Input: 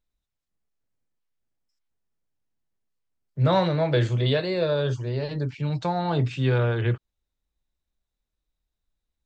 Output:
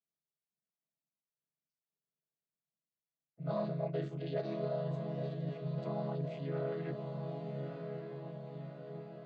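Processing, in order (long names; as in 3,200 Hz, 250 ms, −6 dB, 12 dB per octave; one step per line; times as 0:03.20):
channel vocoder with a chord as carrier minor triad, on C#3
parametric band 650 Hz +7.5 dB 0.22 octaves
on a send: feedback delay with all-pass diffusion 1,238 ms, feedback 56%, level −7.5 dB
on the sum: reversed playback
downward compressor 5 to 1, threshold −23 dBFS, peak gain reduction 9 dB
reversed playback
low-shelf EQ 200 Hz −7.5 dB
level −7 dB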